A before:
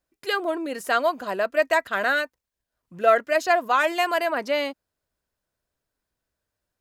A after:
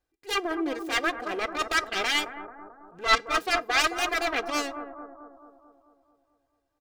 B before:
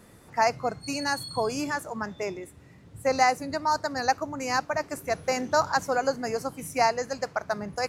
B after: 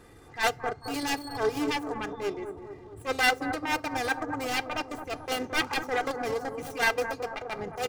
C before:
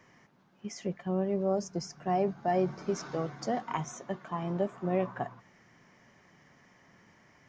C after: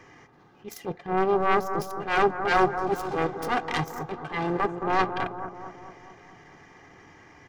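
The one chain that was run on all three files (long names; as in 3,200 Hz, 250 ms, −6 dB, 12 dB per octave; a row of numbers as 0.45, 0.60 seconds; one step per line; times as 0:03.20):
phase distortion by the signal itself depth 0.8 ms
feedback delay network reverb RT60 0.32 s, high-frequency decay 0.85×, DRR 15 dB
transient designer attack −12 dB, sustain −8 dB
high-shelf EQ 6,200 Hz −7.5 dB
comb filter 2.5 ms, depth 54%
on a send: bucket-brigade delay 219 ms, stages 2,048, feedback 58%, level −8 dB
on the sum: normalise the peak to −9 dBFS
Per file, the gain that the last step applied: 0.0, +1.5, +10.0 decibels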